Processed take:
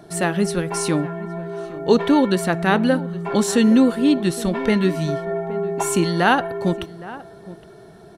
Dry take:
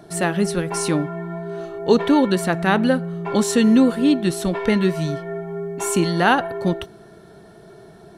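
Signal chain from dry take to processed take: 5.07–5.81 bell 730 Hz +4.5 dB -> +11.5 dB 1.7 oct; outdoor echo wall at 140 m, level -17 dB

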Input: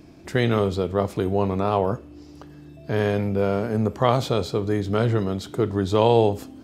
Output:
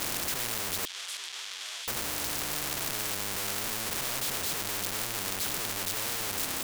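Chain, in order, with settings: infinite clipping; 0.85–1.88 ladder band-pass 3400 Hz, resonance 90%; spectral compressor 4:1; gain +7 dB

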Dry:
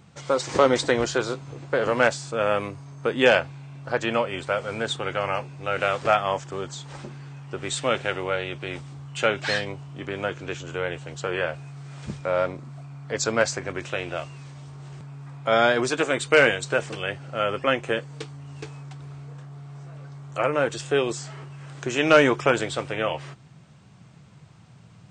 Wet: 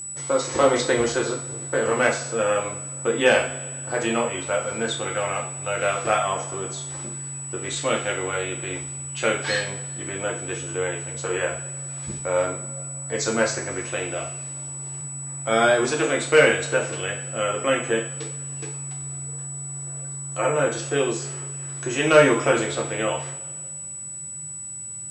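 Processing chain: whine 7900 Hz -30 dBFS; two-slope reverb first 0.42 s, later 2.1 s, from -19 dB, DRR -1 dB; gain -3 dB

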